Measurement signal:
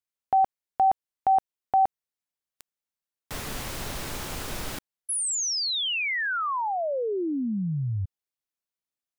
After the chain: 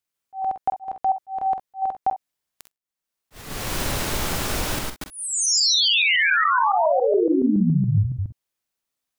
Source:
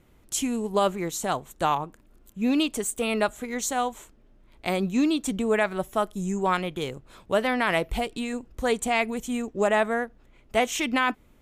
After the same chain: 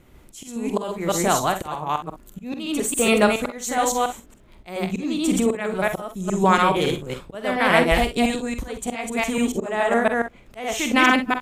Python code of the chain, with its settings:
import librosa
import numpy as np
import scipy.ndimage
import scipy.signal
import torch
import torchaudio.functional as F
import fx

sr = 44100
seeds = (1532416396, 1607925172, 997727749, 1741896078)

y = fx.reverse_delay(x, sr, ms=140, wet_db=-1.5)
y = fx.auto_swell(y, sr, attack_ms=479.0)
y = fx.room_early_taps(y, sr, ms=(47, 63), db=(-9.5, -14.5))
y = y * 10.0 ** (6.0 / 20.0)